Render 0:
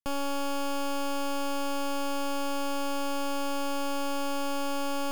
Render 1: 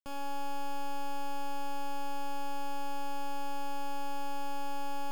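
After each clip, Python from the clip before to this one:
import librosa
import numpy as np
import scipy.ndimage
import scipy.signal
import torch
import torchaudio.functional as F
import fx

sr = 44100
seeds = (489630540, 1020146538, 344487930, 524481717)

y = fx.comb_fb(x, sr, f0_hz=120.0, decay_s=1.1, harmonics='all', damping=0.0, mix_pct=80)
y = F.gain(torch.from_numpy(y), 1.5).numpy()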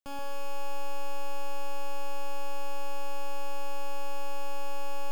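y = fx.echo_alternate(x, sr, ms=130, hz=1100.0, feedback_pct=51, wet_db=-3)
y = F.gain(torch.from_numpy(y), 1.5).numpy()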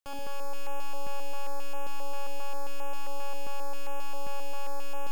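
y = fx.filter_held_notch(x, sr, hz=7.5, low_hz=220.0, high_hz=4400.0)
y = F.gain(torch.from_numpy(y), 1.5).numpy()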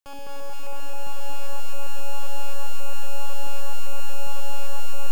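y = fx.echo_crushed(x, sr, ms=230, feedback_pct=80, bits=9, wet_db=-3.5)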